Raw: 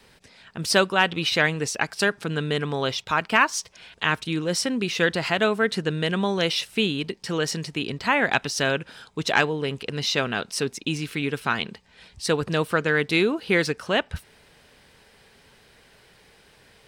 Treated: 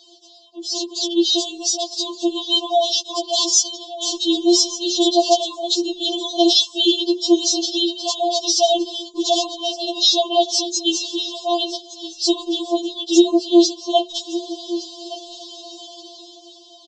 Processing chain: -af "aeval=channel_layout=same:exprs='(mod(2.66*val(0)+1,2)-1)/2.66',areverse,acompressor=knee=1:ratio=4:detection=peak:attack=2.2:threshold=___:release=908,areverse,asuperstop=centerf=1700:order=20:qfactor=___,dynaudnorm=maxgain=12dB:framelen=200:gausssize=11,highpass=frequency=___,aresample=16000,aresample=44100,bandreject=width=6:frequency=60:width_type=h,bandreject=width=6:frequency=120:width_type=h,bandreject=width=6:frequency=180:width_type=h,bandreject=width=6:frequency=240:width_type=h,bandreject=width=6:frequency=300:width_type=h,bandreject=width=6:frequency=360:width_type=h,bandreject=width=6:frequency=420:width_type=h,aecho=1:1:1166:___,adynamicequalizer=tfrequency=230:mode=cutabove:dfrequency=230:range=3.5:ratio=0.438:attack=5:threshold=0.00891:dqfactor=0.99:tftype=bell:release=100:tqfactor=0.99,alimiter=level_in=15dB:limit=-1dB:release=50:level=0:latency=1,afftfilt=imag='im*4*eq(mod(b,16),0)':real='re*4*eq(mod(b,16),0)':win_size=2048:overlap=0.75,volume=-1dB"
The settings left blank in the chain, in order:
-30dB, 0.82, 170, 0.15